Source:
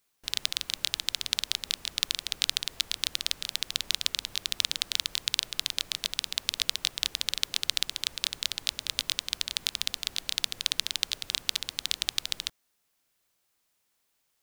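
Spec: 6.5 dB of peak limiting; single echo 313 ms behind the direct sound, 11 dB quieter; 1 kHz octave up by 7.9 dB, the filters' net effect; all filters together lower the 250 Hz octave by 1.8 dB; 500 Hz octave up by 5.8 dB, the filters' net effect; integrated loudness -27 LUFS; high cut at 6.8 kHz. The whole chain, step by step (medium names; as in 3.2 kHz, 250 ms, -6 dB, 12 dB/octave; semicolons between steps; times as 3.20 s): low-pass 6.8 kHz; peaking EQ 250 Hz -5 dB; peaking EQ 500 Hz +5.5 dB; peaking EQ 1 kHz +9 dB; peak limiter -9 dBFS; delay 313 ms -11 dB; trim +5.5 dB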